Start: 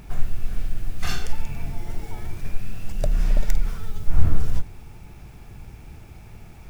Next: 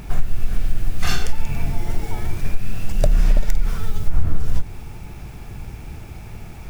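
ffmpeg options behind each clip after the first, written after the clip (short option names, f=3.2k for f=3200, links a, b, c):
-af "acompressor=threshold=-16dB:ratio=6,volume=7.5dB"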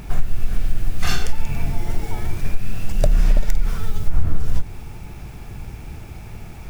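-af anull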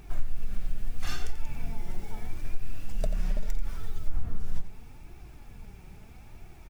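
-filter_complex "[0:a]flanger=delay=2.5:depth=3:regen=41:speed=0.77:shape=triangular,asplit=2[a][b];[b]adelay=87.46,volume=-12dB,highshelf=f=4k:g=-1.97[c];[a][c]amix=inputs=2:normalize=0,volume=-9dB"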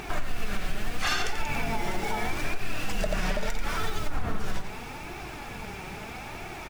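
-filter_complex "[0:a]asplit=2[a][b];[b]highpass=f=720:p=1,volume=23dB,asoftclip=type=tanh:threshold=-13dB[c];[a][c]amix=inputs=2:normalize=0,lowpass=f=3.5k:p=1,volume=-6dB,alimiter=limit=-22dB:level=0:latency=1:release=99,volume=4.5dB"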